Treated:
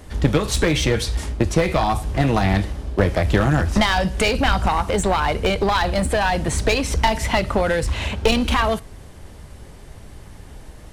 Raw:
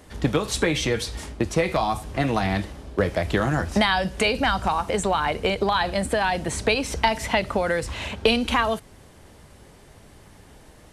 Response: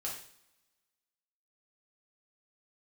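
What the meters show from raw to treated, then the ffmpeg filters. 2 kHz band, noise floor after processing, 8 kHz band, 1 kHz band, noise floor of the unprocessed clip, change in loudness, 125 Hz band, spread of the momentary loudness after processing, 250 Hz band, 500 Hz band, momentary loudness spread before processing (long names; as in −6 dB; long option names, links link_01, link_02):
+2.0 dB, −41 dBFS, +4.0 dB, +2.5 dB, −50 dBFS, +3.5 dB, +8.0 dB, 4 LU, +4.0 dB, +3.0 dB, 5 LU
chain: -filter_complex "[0:a]lowshelf=frequency=90:gain=11.5,aeval=exprs='clip(val(0),-1,0.0944)':channel_layout=same,asplit=2[link_01][link_02];[1:a]atrim=start_sample=2205[link_03];[link_02][link_03]afir=irnorm=-1:irlink=0,volume=-22dB[link_04];[link_01][link_04]amix=inputs=2:normalize=0,volume=3.5dB"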